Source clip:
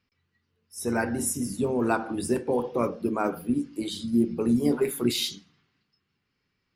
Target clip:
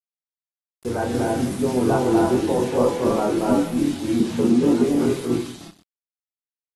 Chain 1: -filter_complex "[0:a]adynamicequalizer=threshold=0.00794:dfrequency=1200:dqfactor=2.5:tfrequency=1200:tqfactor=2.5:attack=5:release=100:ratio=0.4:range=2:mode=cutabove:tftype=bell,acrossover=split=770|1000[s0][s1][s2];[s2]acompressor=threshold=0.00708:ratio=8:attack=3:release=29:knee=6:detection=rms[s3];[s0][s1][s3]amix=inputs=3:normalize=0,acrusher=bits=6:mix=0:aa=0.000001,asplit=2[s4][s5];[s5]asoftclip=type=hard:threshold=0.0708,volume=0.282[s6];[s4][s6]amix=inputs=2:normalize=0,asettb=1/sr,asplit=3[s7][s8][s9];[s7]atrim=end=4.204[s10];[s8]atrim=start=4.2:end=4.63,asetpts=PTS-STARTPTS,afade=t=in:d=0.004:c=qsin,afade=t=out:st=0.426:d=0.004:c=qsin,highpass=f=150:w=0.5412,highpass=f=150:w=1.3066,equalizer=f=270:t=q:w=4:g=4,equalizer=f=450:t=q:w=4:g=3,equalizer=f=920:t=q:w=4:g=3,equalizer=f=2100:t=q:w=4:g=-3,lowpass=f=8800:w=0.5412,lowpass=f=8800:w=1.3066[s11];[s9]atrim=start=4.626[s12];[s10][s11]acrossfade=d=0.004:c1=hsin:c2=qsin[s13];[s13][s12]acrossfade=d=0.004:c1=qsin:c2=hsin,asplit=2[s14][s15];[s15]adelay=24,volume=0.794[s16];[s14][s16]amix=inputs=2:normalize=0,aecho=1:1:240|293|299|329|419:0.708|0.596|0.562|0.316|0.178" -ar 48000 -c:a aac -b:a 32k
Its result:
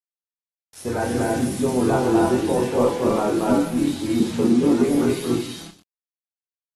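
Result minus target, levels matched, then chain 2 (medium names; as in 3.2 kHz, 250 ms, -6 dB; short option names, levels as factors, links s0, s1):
compression: peak gain reduction -7 dB
-filter_complex "[0:a]adynamicequalizer=threshold=0.00794:dfrequency=1200:dqfactor=2.5:tfrequency=1200:tqfactor=2.5:attack=5:release=100:ratio=0.4:range=2:mode=cutabove:tftype=bell,acrossover=split=770|1000[s0][s1][s2];[s2]acompressor=threshold=0.00282:ratio=8:attack=3:release=29:knee=6:detection=rms[s3];[s0][s1][s3]amix=inputs=3:normalize=0,acrusher=bits=6:mix=0:aa=0.000001,asplit=2[s4][s5];[s5]asoftclip=type=hard:threshold=0.0708,volume=0.282[s6];[s4][s6]amix=inputs=2:normalize=0,asettb=1/sr,asplit=3[s7][s8][s9];[s7]atrim=end=4.204[s10];[s8]atrim=start=4.2:end=4.63,asetpts=PTS-STARTPTS,afade=t=in:d=0.004:c=qsin,afade=t=out:st=0.426:d=0.004:c=qsin,highpass=f=150:w=0.5412,highpass=f=150:w=1.3066,equalizer=f=270:t=q:w=4:g=4,equalizer=f=450:t=q:w=4:g=3,equalizer=f=920:t=q:w=4:g=3,equalizer=f=2100:t=q:w=4:g=-3,lowpass=f=8800:w=0.5412,lowpass=f=8800:w=1.3066[s11];[s9]atrim=start=4.626[s12];[s10][s11]acrossfade=d=0.004:c1=hsin:c2=qsin[s13];[s13][s12]acrossfade=d=0.004:c1=qsin:c2=hsin,asplit=2[s14][s15];[s15]adelay=24,volume=0.794[s16];[s14][s16]amix=inputs=2:normalize=0,aecho=1:1:240|293|299|329|419:0.708|0.596|0.562|0.316|0.178" -ar 48000 -c:a aac -b:a 32k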